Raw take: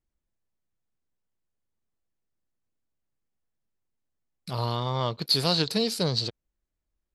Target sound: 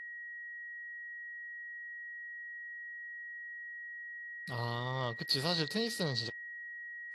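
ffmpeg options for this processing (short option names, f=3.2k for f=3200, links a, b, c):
-af "aeval=exprs='val(0)+0.02*sin(2*PI*1900*n/s)':c=same,volume=-8.5dB" -ar 32000 -c:a aac -b:a 48k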